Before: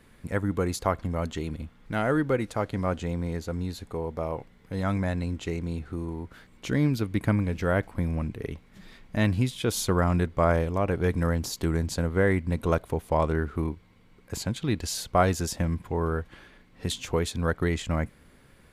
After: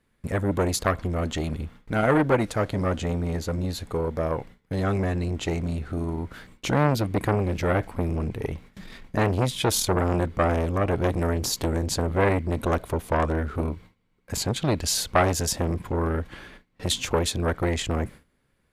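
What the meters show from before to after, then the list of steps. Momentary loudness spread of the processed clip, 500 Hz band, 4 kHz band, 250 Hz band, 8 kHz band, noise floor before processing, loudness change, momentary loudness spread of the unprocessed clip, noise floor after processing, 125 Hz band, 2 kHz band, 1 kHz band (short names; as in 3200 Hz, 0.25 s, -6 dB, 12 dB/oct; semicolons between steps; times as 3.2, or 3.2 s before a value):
9 LU, +2.5 dB, +6.5 dB, +1.0 dB, +6.5 dB, -57 dBFS, +2.5 dB, 10 LU, -69 dBFS, +1.5 dB, +2.0 dB, +3.5 dB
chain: gate with hold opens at -42 dBFS; core saturation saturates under 1400 Hz; gain +7.5 dB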